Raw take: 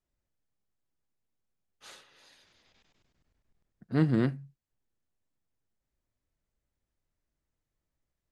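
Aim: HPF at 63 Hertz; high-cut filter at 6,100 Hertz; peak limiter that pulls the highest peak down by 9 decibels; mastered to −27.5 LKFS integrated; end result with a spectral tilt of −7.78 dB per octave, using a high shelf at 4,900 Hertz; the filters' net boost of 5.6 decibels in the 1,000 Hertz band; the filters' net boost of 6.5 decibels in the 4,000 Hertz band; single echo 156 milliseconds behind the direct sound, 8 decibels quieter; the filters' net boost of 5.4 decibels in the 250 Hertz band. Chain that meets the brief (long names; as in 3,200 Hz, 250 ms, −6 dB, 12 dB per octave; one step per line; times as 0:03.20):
high-pass filter 63 Hz
low-pass filter 6,100 Hz
parametric band 250 Hz +6.5 dB
parametric band 1,000 Hz +6.5 dB
parametric band 4,000 Hz +6.5 dB
high-shelf EQ 4,900 Hz +4 dB
brickwall limiter −20.5 dBFS
single-tap delay 156 ms −8 dB
level +4.5 dB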